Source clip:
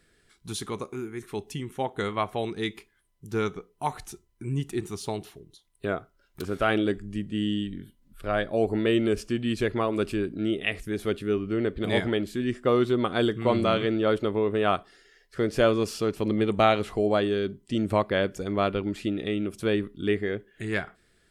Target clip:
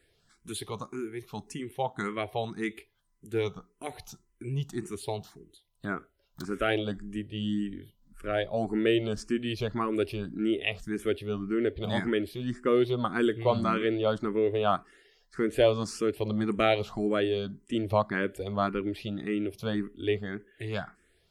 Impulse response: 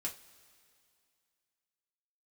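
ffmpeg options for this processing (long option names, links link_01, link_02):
-filter_complex "[0:a]asplit=2[link_01][link_02];[link_02]afreqshift=1.8[link_03];[link_01][link_03]amix=inputs=2:normalize=1"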